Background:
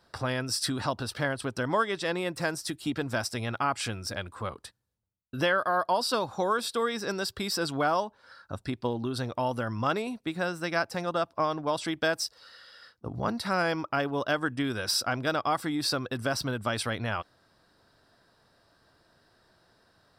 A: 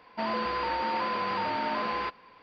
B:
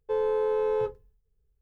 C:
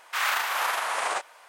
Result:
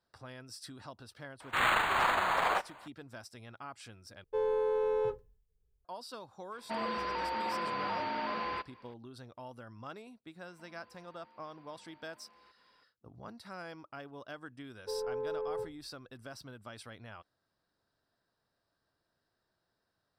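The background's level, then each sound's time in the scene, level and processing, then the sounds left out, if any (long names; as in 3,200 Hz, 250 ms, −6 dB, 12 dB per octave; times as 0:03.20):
background −18 dB
0:01.40: mix in C + linearly interpolated sample-rate reduction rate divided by 8×
0:04.24: overwrite with B −4.5 dB
0:06.52: mix in A −5.5 dB
0:10.42: mix in A −15 dB + downward compressor 12 to 1, threshold −45 dBFS
0:14.78: mix in B −10.5 dB + low-pass filter 1,200 Hz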